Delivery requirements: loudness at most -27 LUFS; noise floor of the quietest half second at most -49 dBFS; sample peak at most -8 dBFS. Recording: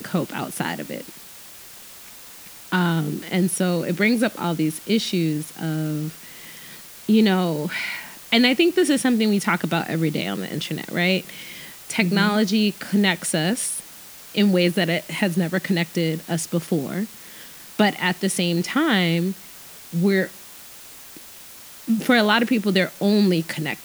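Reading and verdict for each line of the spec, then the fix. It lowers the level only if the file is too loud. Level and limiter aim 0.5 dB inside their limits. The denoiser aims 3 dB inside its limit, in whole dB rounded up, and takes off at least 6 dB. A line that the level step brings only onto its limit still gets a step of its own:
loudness -21.5 LUFS: fail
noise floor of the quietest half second -42 dBFS: fail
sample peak -4.5 dBFS: fail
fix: noise reduction 6 dB, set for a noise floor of -42 dBFS; trim -6 dB

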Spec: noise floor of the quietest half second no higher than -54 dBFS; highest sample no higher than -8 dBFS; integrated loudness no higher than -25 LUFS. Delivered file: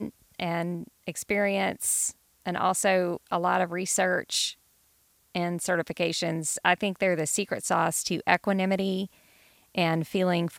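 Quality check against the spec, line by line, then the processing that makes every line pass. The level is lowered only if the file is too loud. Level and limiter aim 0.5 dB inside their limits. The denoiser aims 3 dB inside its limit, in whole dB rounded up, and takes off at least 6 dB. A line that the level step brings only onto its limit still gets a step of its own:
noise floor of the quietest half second -65 dBFS: pass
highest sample -5.5 dBFS: fail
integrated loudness -27.0 LUFS: pass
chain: peak limiter -8.5 dBFS

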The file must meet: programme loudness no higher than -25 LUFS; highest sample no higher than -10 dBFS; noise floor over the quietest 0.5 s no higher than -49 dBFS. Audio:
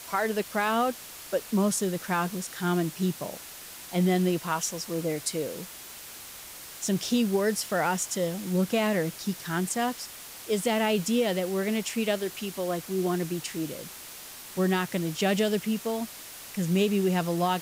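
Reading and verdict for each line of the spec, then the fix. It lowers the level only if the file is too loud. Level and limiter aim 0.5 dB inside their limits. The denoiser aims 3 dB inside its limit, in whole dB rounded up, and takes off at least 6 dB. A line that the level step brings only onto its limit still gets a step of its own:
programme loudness -28.0 LUFS: pass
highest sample -14.0 dBFS: pass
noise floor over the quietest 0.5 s -44 dBFS: fail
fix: noise reduction 8 dB, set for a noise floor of -44 dBFS

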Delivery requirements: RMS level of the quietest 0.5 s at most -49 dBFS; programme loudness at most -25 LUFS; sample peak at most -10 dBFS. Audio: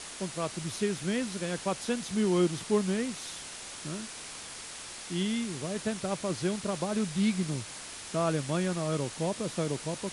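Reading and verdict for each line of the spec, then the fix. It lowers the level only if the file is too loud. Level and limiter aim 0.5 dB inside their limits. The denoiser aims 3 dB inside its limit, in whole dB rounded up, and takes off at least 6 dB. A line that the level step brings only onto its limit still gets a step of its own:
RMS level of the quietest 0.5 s -43 dBFS: fail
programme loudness -32.0 LUFS: pass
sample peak -15.5 dBFS: pass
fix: noise reduction 9 dB, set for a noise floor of -43 dBFS

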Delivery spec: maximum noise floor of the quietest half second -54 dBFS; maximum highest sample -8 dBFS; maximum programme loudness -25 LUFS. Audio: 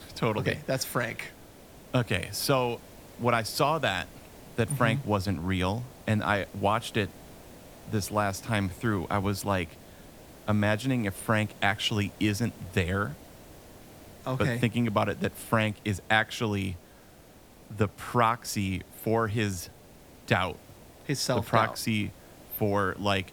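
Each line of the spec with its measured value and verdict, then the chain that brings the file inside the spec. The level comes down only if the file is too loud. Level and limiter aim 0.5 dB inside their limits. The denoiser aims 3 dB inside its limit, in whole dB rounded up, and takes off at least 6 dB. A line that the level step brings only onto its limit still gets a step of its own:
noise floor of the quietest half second -53 dBFS: fail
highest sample -7.5 dBFS: fail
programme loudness -29.0 LUFS: pass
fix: noise reduction 6 dB, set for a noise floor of -53 dBFS; peak limiter -8.5 dBFS

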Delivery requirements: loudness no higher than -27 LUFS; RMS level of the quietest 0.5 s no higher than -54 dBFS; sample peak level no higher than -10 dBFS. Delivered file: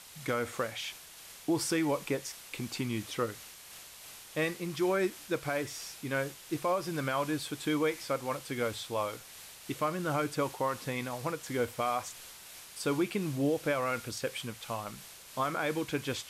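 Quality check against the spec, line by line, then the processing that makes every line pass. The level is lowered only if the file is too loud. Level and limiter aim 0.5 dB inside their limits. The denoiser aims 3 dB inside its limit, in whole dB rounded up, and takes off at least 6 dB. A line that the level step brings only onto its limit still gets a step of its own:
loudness -33.5 LUFS: pass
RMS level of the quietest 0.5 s -51 dBFS: fail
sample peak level -20.0 dBFS: pass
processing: noise reduction 6 dB, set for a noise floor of -51 dBFS

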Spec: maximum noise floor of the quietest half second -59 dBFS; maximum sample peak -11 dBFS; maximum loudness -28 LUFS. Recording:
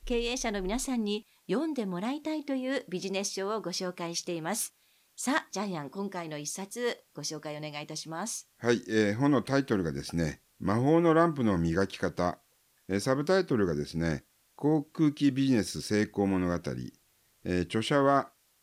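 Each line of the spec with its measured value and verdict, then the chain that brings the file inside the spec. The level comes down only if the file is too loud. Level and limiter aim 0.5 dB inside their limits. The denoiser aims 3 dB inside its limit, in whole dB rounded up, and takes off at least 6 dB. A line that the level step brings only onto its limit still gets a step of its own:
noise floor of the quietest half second -68 dBFS: pass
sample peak -12.5 dBFS: pass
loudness -30.5 LUFS: pass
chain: none needed

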